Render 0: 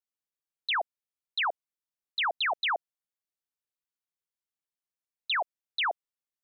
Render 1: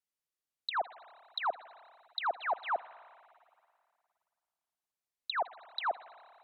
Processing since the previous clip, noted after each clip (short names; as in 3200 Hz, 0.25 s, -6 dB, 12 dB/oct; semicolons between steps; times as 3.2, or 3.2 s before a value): treble ducked by the level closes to 1100 Hz, closed at -30.5 dBFS; spring tank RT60 2.3 s, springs 52/56 ms, chirp 30 ms, DRR 16 dB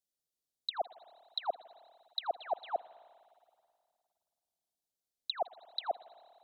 band shelf 1600 Hz -15.5 dB; gain +1.5 dB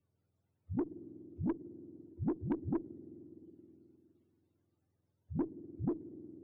spectrum mirrored in octaves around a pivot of 480 Hz; tube stage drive 33 dB, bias 0.2; three-band squash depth 40%; gain +7 dB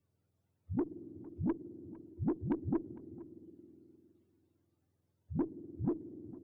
outdoor echo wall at 78 m, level -19 dB; gain +1 dB